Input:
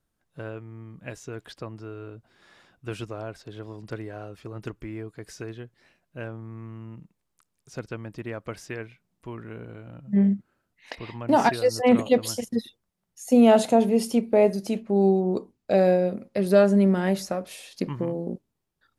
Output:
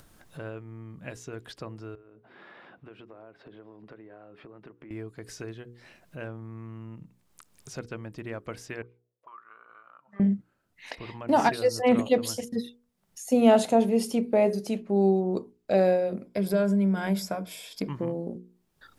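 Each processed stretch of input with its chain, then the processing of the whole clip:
1.95–4.91 HPF 210 Hz + air absorption 460 m + compressor 2.5:1, threshold -60 dBFS
8.82–10.2 RIAA curve recording + auto-wah 410–1200 Hz, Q 14, up, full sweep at -44.5 dBFS
16.26–17.88 ripple EQ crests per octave 1.7, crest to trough 10 dB + compressor 3:1, threshold -20 dBFS
whole clip: notches 60/120/180/240/300/360/420/480 Hz; upward compressor, threshold -35 dBFS; gain -2 dB

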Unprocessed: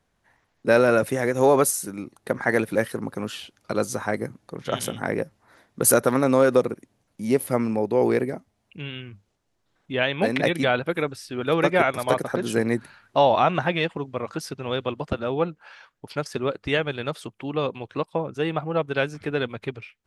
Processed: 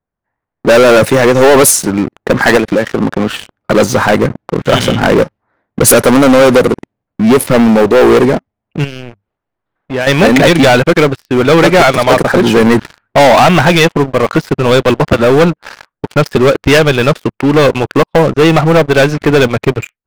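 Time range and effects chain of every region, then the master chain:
2.57–3.3 HPF 120 Hz + high shelf 7300 Hz -9 dB + compressor, threshold -27 dBFS
8.84–10.07 compressor 1.5:1, threshold -56 dBFS + tone controls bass 0 dB, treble -3 dB + mismatched tape noise reduction encoder only
whole clip: low-pass opened by the level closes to 1500 Hz, open at -14.5 dBFS; AGC gain up to 6 dB; sample leveller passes 5

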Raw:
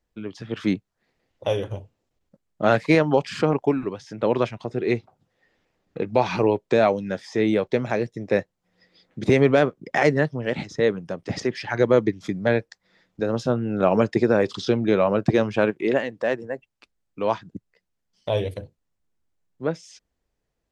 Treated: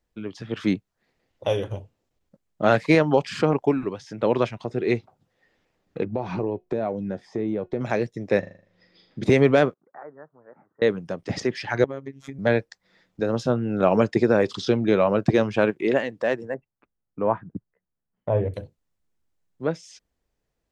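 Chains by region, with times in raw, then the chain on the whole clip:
6.04–7.81 tilt shelf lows +9 dB, about 1200 Hz + compressor 2.5:1, threshold -20 dBFS + resonator 360 Hz, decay 0.21 s, mix 50%
8.39–9.23 LPF 5200 Hz + flutter echo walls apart 6.8 m, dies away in 0.49 s
9.74–10.82 G.711 law mismatch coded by mu + steep low-pass 1400 Hz 48 dB/oct + differentiator
11.84–12.39 bell 4600 Hz -10.5 dB 0.62 oct + compressor 2.5:1, threshold -31 dBFS + robotiser 136 Hz
16.54–18.54 gate -55 dBFS, range -6 dB + LPF 1700 Hz 24 dB/oct + bell 140 Hz +4 dB 1.7 oct
whole clip: dry

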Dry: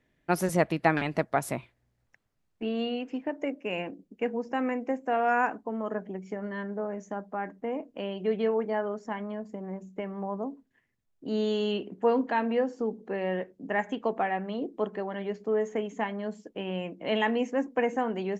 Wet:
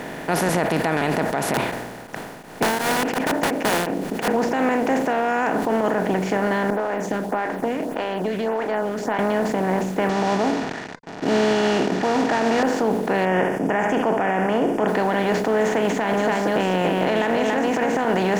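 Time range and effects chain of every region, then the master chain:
1.54–4.28 wrapped overs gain 29 dB + beating tremolo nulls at 2.8 Hz
6.7–9.19 compressor 3:1, threshold -43 dBFS + photocell phaser 1.7 Hz
10.09–12.63 CVSD 32 kbps + notch comb 520 Hz
13.25–14.88 Butterworth band-stop 4000 Hz, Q 1.2 + air absorption 54 m + flutter echo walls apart 11.6 m, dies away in 0.24 s
15.85–18.05 echo 0.282 s -5.5 dB + compressor, threshold -32 dBFS
whole clip: per-bin compression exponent 0.4; limiter -16.5 dBFS; sustainer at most 44 dB/s; gain +5.5 dB

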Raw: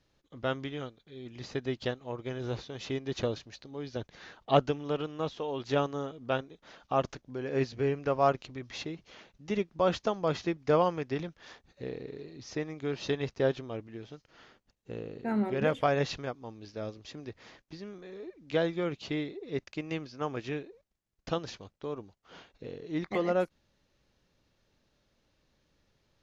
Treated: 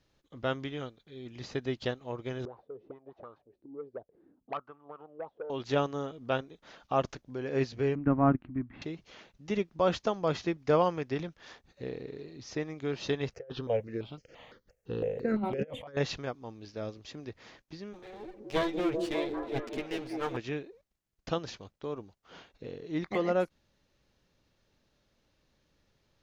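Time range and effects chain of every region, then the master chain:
2.45–5.5 tilt -3.5 dB/oct + auto-wah 230–1200 Hz, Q 7.5, up, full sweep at -21 dBFS + core saturation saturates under 1100 Hz
7.95–8.82 G.711 law mismatch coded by A + LPF 1900 Hz 24 dB/oct + resonant low shelf 360 Hz +8 dB, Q 3
13.33–15.97 bell 500 Hz +14 dB 0.48 oct + negative-ratio compressor -28 dBFS, ratio -0.5 + step phaser 5.9 Hz 1000–3800 Hz
17.93–20.37 minimum comb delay 8.9 ms + delay with a stepping band-pass 0.195 s, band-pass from 270 Hz, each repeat 0.7 oct, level 0 dB
whole clip: dry

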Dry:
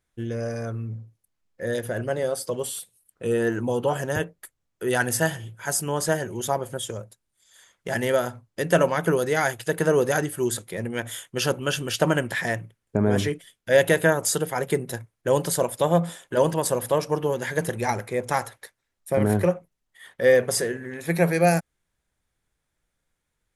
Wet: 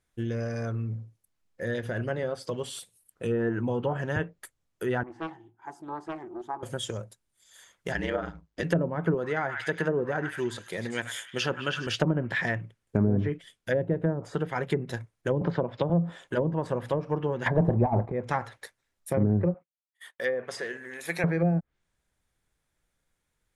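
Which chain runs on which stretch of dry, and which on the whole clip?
5.03–6.63 gate with hold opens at -33 dBFS, closes at -39 dBFS + double band-pass 530 Hz, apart 1.3 oct + Doppler distortion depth 0.53 ms
7.92–8.63 LPF 6400 Hz + ring modulator 51 Hz
9.14–11.87 HPF 55 Hz + low shelf 230 Hz -7 dB + delay with a stepping band-pass 0.101 s, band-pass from 1400 Hz, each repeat 0.7 oct, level -6.5 dB
15.41–15.9 LPF 4800 Hz 24 dB/oct + three-band squash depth 70%
17.46–18.12 band shelf 830 Hz +12.5 dB 1.1 oct + negative-ratio compressor -16 dBFS, ratio -0.5 + sample leveller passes 2
19.54–21.24 gate -49 dBFS, range -24 dB + HPF 920 Hz 6 dB/oct
whole clip: treble ducked by the level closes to 450 Hz, closed at -16 dBFS; dynamic EQ 570 Hz, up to -6 dB, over -34 dBFS, Q 0.8

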